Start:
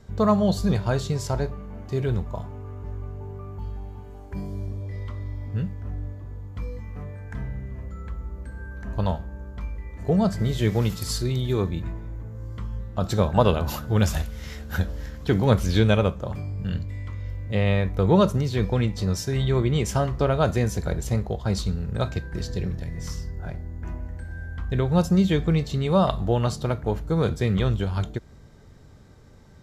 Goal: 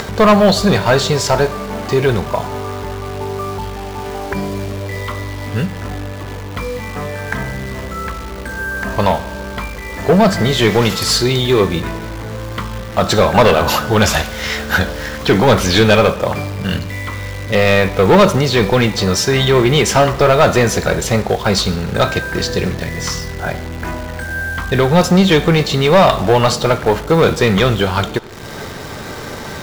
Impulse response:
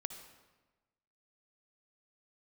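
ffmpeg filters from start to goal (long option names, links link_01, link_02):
-filter_complex "[0:a]acompressor=mode=upward:threshold=-28dB:ratio=2.5,asplit=2[link_01][link_02];[link_02]highpass=frequency=720:poles=1,volume=22dB,asoftclip=type=tanh:threshold=-4.5dB[link_03];[link_01][link_03]amix=inputs=2:normalize=0,lowpass=frequency=6300:poles=1,volume=-6dB,acontrast=35,acrusher=bits=6:dc=4:mix=0:aa=0.000001,asplit=2[link_04][link_05];[1:a]atrim=start_sample=2205,lowpass=6800[link_06];[link_05][link_06]afir=irnorm=-1:irlink=0,volume=-4.5dB[link_07];[link_04][link_07]amix=inputs=2:normalize=0,volume=-3dB"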